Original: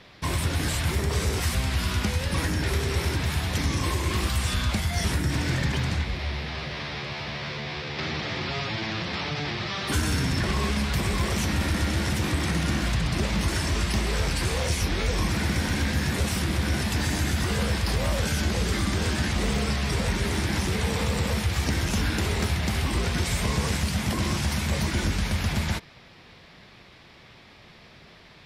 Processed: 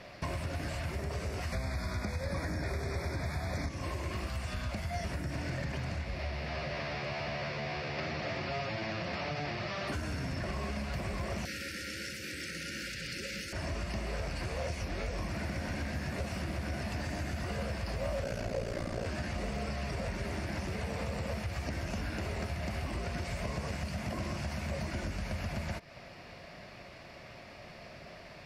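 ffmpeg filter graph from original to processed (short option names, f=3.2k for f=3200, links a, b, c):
-filter_complex "[0:a]asettb=1/sr,asplit=3[a][b][c];[a]atrim=end=1.524[d];[b]atrim=start=1.52:end=3.69,asetpts=PTS-STARTPTS,afade=t=in:d=0.004:c=qsin,afade=t=out:st=2.166:d=0.004:c=qsin,asuperstop=centerf=2900:order=20:qfactor=3.4,acontrast=71[e];[c]atrim=start=3.686[f];[d][e]acrossfade=d=0.004:c1=hsin:c2=qsin[g];[g][f]acrossfade=d=0.004:c1=qsin:c2=hsin,asettb=1/sr,asplit=3[h][i][j];[h]atrim=end=11.454[k];[i]atrim=start=11.45:end=13.53,asetpts=PTS-STARTPTS,afade=t=in:d=0.004:c=qsin,afade=t=out:st=2.076:d=0.004:c=qsin,asuperstop=centerf=860:order=20:qfactor=1.1,aemphasis=mode=production:type=riaa[l];[j]atrim=start=13.526[m];[k][l]acrossfade=d=0.004:c1=hsin:c2=qsin[n];[n][m]acrossfade=d=0.004:c1=qsin:c2=hsin,asettb=1/sr,asplit=3[o][p][q];[o]atrim=end=18.234[r];[p]atrim=start=18.23:end=19.06,asetpts=PTS-STARTPTS,afade=t=in:d=0.004:c=qsin,afade=t=out:st=0.826:d=0.004:c=qsin,equalizer=f=510:t=o:w=0.65:g=10.5,asplit=2[s][t];[t]adelay=45,volume=-11.5dB[u];[s][u]amix=inputs=2:normalize=0,atrim=end_sample=36603,aeval=exprs='val(0)*sin(2*PI*29*n/s)':c=same[v];[q]atrim=start=19.056[w];[r][v]acrossfade=d=0.004:c1=hsin:c2=qsin[x];[x][w]acrossfade=d=0.004:c1=qsin:c2=hsin,acompressor=threshold=-34dB:ratio=6,superequalizer=8b=2.51:13b=0.447,acrossover=split=5200[y][z];[z]acompressor=threshold=-57dB:ratio=4:attack=1:release=60[aa];[y][aa]amix=inputs=2:normalize=0"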